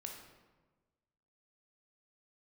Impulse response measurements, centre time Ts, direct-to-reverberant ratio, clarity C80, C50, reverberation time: 41 ms, 1.0 dB, 6.5 dB, 4.0 dB, 1.3 s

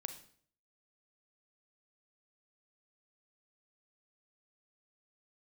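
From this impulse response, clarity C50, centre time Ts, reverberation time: 10.5 dB, 10 ms, 0.55 s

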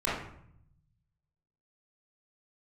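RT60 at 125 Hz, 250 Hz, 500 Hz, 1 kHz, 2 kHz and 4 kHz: 1.7 s, 1.0 s, 0.65 s, 0.65 s, 0.60 s, 0.45 s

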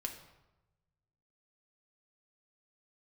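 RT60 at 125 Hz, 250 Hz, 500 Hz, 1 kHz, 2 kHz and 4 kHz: 1.9 s, 1.1 s, 1.0 s, 1.0 s, 0.80 s, 0.70 s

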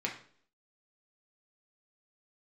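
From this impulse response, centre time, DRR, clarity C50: 20 ms, -1.5 dB, 8.5 dB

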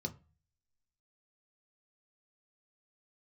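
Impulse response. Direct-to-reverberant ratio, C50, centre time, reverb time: 4.0 dB, 18.5 dB, 6 ms, 0.35 s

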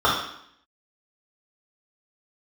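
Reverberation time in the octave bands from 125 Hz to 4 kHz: 0.60 s, 0.80 s, 0.65 s, 0.70 s, 0.70 s, 0.70 s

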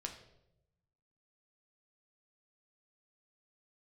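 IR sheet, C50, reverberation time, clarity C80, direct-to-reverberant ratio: 9.0 dB, 0.85 s, 11.5 dB, 2.5 dB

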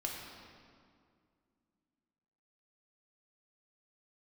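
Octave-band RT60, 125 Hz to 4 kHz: 2.7 s, 3.2 s, 2.3 s, 2.1 s, 1.7 s, 1.5 s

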